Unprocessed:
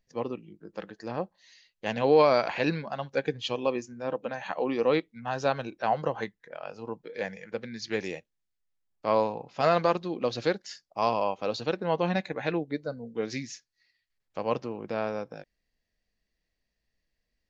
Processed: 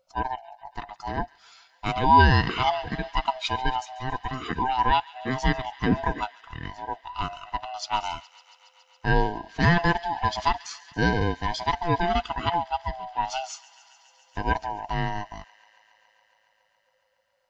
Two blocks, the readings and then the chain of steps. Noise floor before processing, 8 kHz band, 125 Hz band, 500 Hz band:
−82 dBFS, can't be measured, +10.0 dB, −5.5 dB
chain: neighbouring bands swapped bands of 500 Hz
delay with a high-pass on its return 139 ms, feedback 83%, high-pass 1,800 Hz, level −18.5 dB
level +4 dB

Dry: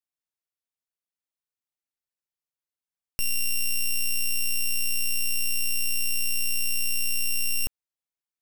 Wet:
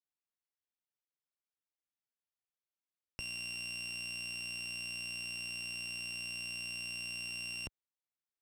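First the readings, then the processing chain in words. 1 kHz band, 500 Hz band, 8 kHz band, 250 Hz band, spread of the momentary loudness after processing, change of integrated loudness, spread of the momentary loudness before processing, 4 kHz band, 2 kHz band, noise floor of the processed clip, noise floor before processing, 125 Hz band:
−6.0 dB, −6.0 dB, −18.5 dB, −6.0 dB, 2 LU, −13.5 dB, 2 LU, −9.5 dB, −7.0 dB, below −85 dBFS, below −85 dBFS, −10.0 dB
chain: high-pass filter 71 Hz
high-frequency loss of the air 100 metres
level −5.5 dB

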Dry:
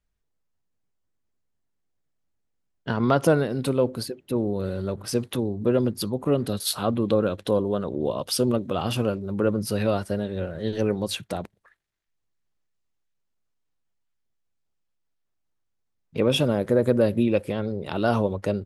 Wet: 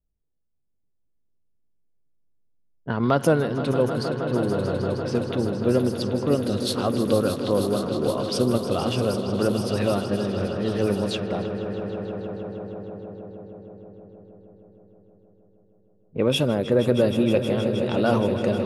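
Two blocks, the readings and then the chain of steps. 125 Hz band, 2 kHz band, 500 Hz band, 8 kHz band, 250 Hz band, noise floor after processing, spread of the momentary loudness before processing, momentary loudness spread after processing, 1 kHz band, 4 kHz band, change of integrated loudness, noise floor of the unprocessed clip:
+1.5 dB, +1.5 dB, +1.5 dB, −3.0 dB, +2.0 dB, −69 dBFS, 8 LU, 13 LU, +1.5 dB, +1.0 dB, +1.0 dB, −76 dBFS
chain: on a send: echo that builds up and dies away 157 ms, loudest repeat 5, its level −12.5 dB
on the sum: low-pass that shuts in the quiet parts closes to 520 Hz, open at −18 dBFS

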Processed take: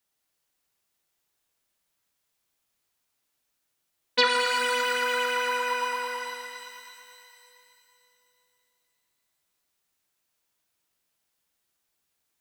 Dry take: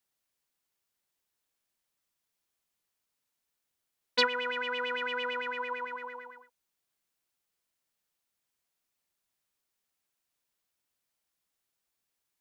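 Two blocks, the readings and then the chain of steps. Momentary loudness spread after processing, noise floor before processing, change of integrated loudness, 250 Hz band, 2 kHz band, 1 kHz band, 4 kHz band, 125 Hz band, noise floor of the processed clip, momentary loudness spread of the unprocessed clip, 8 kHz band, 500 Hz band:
17 LU, −84 dBFS, +6.0 dB, +2.5 dB, +6.5 dB, +8.5 dB, +6.5 dB, can't be measured, −78 dBFS, 14 LU, +17.5 dB, +6.0 dB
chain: reverb with rising layers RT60 3 s, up +12 semitones, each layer −8 dB, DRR 0.5 dB
level +3 dB

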